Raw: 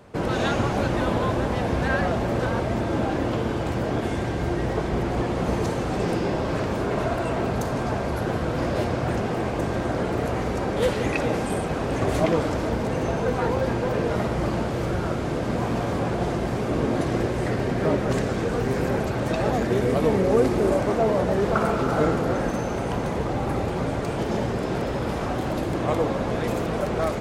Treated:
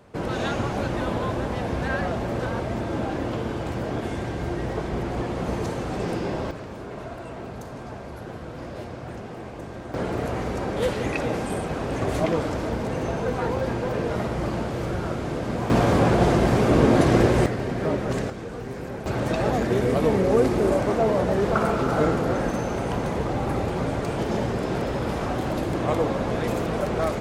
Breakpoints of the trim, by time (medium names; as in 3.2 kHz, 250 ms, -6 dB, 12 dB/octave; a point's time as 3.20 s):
-3 dB
from 6.51 s -11 dB
from 9.94 s -2 dB
from 15.70 s +6.5 dB
from 17.46 s -2.5 dB
from 18.30 s -9.5 dB
from 19.06 s 0 dB